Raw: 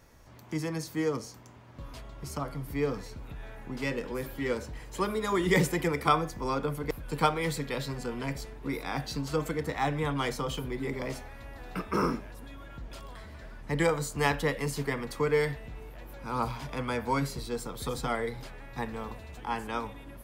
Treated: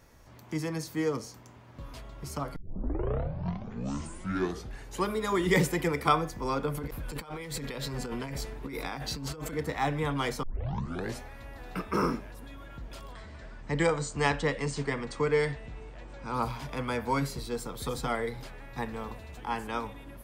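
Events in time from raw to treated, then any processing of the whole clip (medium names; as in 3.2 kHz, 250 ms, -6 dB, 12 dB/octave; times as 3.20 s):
2.56 s: tape start 2.51 s
6.72–9.54 s: compressor with a negative ratio -37 dBFS
10.43 s: tape start 0.77 s
13.12–16.34 s: brick-wall FIR low-pass 8.9 kHz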